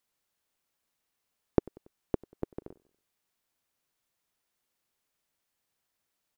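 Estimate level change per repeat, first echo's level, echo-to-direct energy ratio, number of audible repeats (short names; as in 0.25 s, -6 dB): -6.0 dB, -23.5 dB, -22.5 dB, 2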